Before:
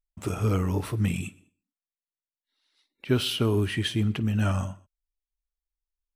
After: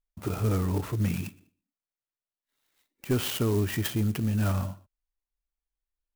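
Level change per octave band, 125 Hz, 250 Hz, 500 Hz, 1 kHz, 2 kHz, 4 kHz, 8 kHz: -1.5 dB, -1.5 dB, -2.0 dB, -2.0 dB, -3.5 dB, -6.0 dB, +2.0 dB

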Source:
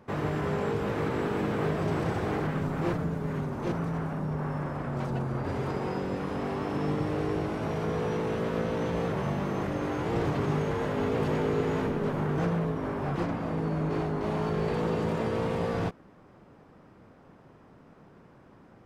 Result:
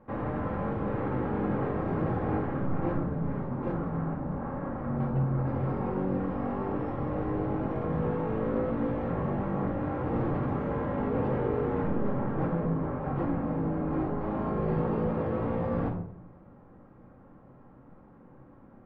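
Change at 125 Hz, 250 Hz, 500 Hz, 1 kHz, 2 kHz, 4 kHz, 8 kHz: 0.0 dB, +0.5 dB, -1.5 dB, -1.0 dB, -6.0 dB, under -15 dB, no reading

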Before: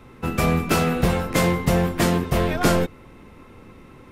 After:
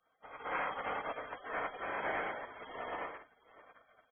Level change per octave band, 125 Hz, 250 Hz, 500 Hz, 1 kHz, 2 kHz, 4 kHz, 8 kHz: -38.5 dB, -30.5 dB, -18.5 dB, -12.0 dB, -11.5 dB, -22.0 dB, under -40 dB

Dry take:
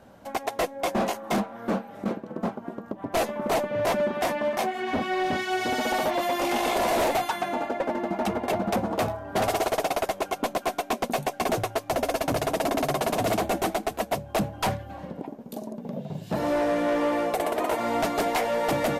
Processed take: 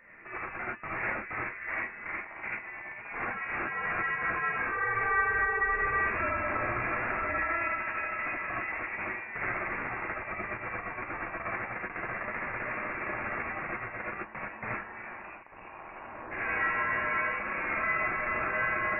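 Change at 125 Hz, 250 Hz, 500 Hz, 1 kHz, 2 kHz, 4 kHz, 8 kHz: -9.5 dB, -15.0 dB, -14.0 dB, -6.0 dB, +4.5 dB, under -20 dB, under -40 dB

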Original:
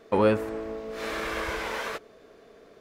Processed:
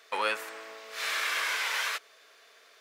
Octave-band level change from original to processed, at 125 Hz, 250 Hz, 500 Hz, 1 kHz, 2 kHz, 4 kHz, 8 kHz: under -30 dB, under -20 dB, -13.0 dB, -2.0 dB, +4.0 dB, +7.0 dB, +8.0 dB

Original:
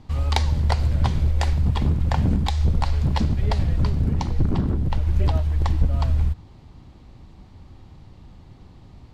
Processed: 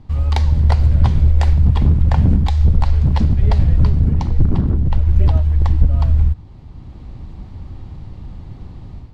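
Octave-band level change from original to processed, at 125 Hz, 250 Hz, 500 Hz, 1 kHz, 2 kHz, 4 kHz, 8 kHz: +7.0 dB, +4.5 dB, +2.0 dB, +1.0 dB, 0.0 dB, -2.0 dB, no reading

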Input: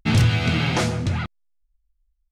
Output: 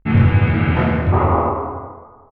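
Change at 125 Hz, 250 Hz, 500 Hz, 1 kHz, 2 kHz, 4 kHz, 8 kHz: +5.5 dB, +6.0 dB, +9.5 dB, +11.5 dB, +2.5 dB, -10.0 dB, under -30 dB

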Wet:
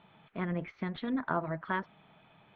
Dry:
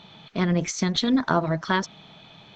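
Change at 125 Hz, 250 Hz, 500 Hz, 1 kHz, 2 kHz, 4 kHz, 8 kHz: -12.0 dB, -11.5 dB, -10.0 dB, -8.5 dB, -9.0 dB, -22.0 dB, under -40 dB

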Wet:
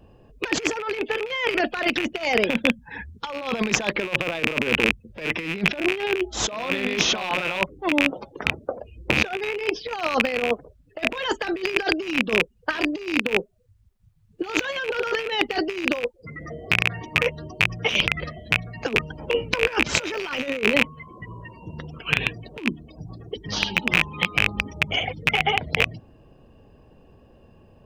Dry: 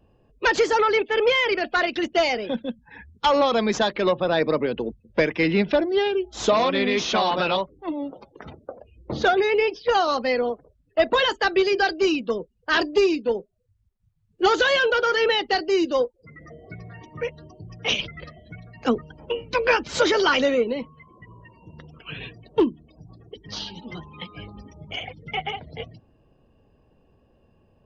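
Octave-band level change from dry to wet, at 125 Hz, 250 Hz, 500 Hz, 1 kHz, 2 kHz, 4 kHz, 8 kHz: +4.5 dB, -0.5 dB, -5.5 dB, -5.0 dB, +3.0 dB, +1.0 dB, no reading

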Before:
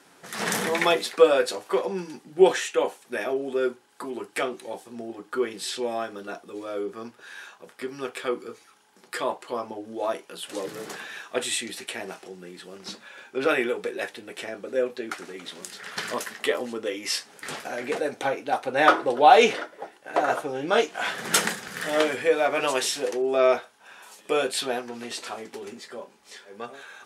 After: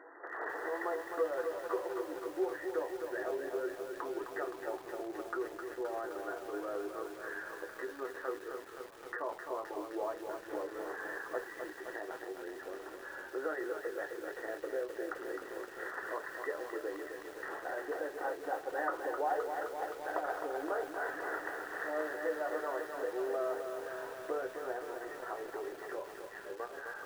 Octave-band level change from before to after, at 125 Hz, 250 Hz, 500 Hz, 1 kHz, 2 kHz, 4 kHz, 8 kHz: under -20 dB, -11.5 dB, -12.0 dB, -13.5 dB, -11.0 dB, -25.0 dB, -23.0 dB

